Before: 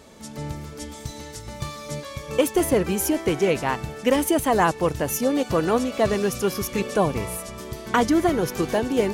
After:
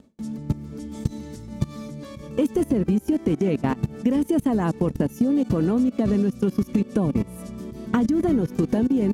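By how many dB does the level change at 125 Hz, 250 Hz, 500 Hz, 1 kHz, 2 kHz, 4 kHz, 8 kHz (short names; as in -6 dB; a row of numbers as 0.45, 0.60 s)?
+4.0 dB, +4.0 dB, -5.0 dB, -9.5 dB, -10.5 dB, under -10 dB, under -10 dB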